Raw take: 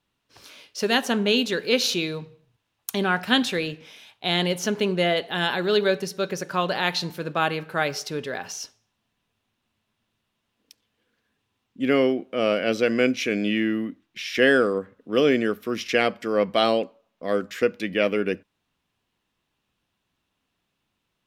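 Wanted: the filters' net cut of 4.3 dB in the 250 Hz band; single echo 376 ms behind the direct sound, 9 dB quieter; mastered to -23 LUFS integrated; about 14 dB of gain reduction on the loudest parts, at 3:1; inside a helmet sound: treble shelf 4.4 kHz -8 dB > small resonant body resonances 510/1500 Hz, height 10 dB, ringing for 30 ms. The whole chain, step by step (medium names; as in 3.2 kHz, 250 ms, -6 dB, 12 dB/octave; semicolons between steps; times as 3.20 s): peaking EQ 250 Hz -5.5 dB; compression 3:1, threshold -36 dBFS; treble shelf 4.4 kHz -8 dB; delay 376 ms -9 dB; small resonant body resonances 510/1500 Hz, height 10 dB, ringing for 30 ms; trim +10 dB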